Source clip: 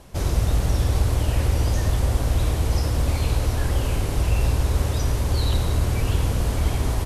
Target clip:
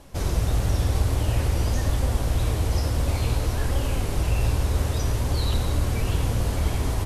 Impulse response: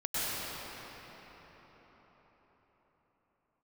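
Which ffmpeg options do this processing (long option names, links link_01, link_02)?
-af "flanger=delay=3.5:depth=8:regen=72:speed=0.52:shape=sinusoidal,volume=3dB"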